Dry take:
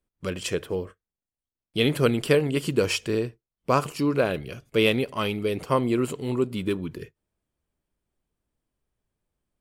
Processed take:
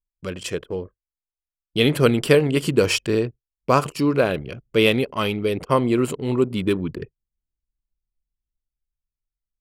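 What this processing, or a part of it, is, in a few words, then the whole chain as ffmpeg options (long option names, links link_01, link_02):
voice memo with heavy noise removal: -af "anlmdn=0.631,dynaudnorm=framelen=220:gausssize=13:maxgain=7dB"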